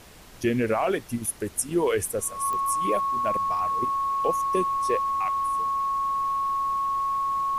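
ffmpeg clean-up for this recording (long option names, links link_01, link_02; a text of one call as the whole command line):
ffmpeg -i in.wav -af "adeclick=threshold=4,bandreject=frequency=1100:width=30,afftdn=noise_reduction=30:noise_floor=-39" out.wav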